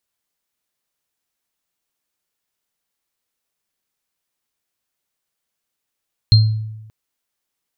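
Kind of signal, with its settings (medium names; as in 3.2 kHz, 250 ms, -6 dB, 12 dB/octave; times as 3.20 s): sine partials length 0.58 s, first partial 109 Hz, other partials 4.19 kHz, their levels -5.5 dB, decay 1.00 s, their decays 0.32 s, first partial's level -5 dB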